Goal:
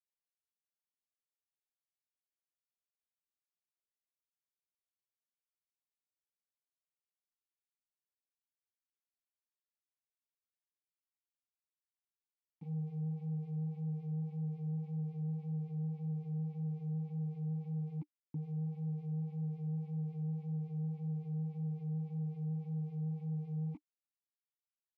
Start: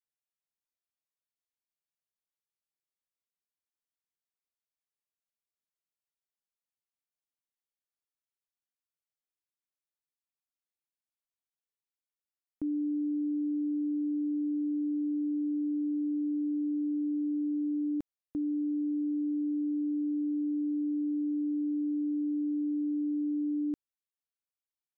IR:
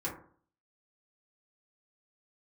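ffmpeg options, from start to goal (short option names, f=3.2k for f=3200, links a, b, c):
-filter_complex "[0:a]bass=f=250:g=0,treble=f=4k:g=-7,bandreject=f=420:w=12,aecho=1:1:7.2:0.9,areverse,acompressor=mode=upward:threshold=-48dB:ratio=2.5,areverse,asetrate=23361,aresample=44100,atempo=1.88775,asoftclip=type=tanh:threshold=-25.5dB,flanger=delay=0:depth=6.8:regen=-16:speed=1.8:shape=triangular,aeval=exprs='val(0)*gte(abs(val(0)),0.0015)':c=same,asplit=3[a][b][c];[a]bandpass=f=300:t=q:w=8,volume=0dB[d];[b]bandpass=f=870:t=q:w=8,volume=-6dB[e];[c]bandpass=f=2.24k:t=q:w=8,volume=-9dB[f];[d][e][f]amix=inputs=3:normalize=0,volume=13.5dB"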